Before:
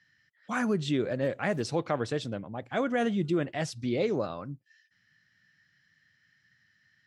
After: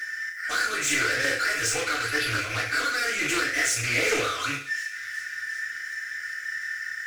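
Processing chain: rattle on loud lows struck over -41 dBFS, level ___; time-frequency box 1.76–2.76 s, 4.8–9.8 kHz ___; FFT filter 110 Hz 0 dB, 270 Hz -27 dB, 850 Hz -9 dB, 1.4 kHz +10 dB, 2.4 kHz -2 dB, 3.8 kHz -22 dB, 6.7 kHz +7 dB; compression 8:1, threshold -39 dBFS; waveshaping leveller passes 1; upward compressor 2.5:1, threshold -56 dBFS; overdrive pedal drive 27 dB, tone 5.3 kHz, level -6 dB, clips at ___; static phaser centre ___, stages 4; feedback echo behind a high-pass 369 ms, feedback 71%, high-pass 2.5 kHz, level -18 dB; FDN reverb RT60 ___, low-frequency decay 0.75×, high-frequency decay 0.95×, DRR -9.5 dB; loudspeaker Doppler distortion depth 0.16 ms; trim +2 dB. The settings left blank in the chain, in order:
-38 dBFS, -27 dB, -25.5 dBFS, 390 Hz, 0.49 s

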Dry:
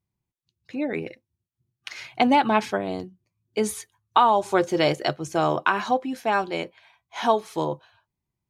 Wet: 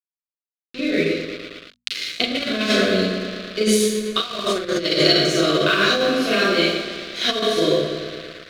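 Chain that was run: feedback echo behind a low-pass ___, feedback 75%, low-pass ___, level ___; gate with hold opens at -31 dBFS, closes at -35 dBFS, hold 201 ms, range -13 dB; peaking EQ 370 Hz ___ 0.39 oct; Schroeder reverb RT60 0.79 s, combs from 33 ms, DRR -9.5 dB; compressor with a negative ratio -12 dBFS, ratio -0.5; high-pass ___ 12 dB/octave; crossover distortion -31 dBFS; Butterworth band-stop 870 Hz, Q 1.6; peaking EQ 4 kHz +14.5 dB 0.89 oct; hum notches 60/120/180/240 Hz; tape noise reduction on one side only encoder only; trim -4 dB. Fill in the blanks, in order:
113 ms, 2.3 kHz, -9 dB, +5 dB, 78 Hz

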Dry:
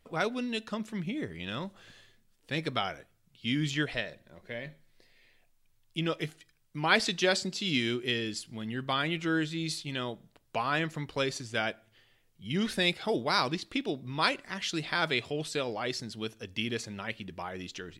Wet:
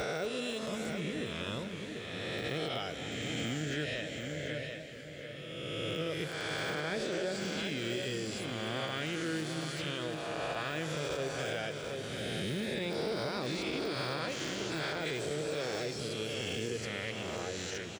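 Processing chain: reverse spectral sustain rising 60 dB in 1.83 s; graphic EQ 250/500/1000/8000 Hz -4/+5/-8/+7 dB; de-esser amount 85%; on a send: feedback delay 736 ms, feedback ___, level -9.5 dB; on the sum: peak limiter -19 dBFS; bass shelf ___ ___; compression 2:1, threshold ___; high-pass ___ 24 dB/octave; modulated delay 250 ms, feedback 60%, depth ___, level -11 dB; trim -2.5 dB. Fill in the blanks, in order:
24%, 80 Hz, +9.5 dB, -33 dBFS, 47 Hz, 121 cents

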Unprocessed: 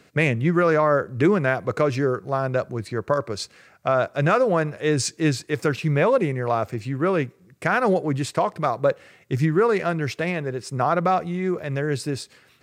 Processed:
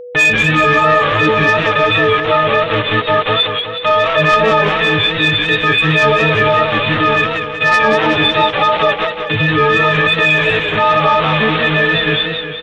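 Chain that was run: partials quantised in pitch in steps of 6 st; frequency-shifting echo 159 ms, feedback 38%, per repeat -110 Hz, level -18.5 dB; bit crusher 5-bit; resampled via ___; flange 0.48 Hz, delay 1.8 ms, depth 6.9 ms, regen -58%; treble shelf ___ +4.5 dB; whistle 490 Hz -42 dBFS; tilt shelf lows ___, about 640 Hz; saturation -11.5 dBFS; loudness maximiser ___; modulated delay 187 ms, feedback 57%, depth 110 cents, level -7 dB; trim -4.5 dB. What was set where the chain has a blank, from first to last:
8 kHz, 2.4 kHz, -4 dB, +19.5 dB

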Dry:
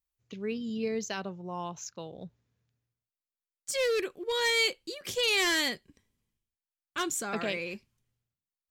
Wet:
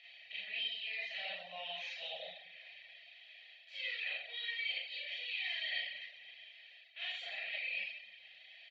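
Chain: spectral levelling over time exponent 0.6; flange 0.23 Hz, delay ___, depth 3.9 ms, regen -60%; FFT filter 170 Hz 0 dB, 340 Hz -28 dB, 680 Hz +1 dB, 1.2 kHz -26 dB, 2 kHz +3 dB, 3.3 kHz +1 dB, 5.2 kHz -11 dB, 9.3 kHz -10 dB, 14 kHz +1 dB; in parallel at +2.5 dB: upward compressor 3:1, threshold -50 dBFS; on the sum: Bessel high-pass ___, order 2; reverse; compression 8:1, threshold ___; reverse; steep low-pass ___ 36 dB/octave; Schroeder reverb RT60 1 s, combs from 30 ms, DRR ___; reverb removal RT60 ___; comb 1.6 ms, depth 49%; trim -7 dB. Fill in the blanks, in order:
8.8 ms, 1.4 kHz, -39 dBFS, 4.4 kHz, -8.5 dB, 0.54 s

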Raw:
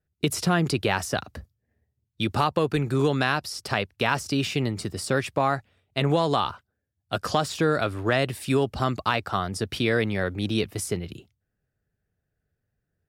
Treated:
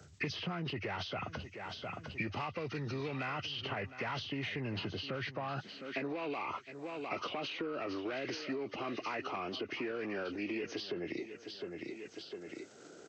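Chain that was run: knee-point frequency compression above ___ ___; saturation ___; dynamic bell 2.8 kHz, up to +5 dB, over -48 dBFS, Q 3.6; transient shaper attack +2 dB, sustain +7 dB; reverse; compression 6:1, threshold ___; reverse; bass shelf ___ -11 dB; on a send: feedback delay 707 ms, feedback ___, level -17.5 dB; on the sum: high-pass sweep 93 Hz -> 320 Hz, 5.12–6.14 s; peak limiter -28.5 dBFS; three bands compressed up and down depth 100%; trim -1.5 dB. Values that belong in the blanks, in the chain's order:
1.1 kHz, 1.5:1, -16.5 dBFS, -34 dBFS, 150 Hz, 24%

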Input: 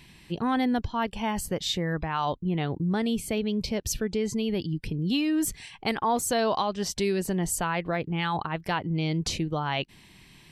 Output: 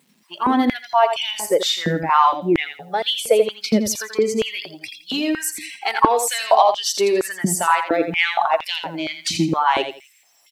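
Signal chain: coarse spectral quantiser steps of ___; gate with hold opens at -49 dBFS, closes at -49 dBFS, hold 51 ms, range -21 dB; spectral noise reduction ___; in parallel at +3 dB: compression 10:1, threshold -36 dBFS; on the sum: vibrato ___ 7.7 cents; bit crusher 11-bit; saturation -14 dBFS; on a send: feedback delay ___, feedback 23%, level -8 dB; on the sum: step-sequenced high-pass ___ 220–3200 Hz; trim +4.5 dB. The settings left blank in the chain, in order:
15 dB, 24 dB, 1 Hz, 84 ms, 4.3 Hz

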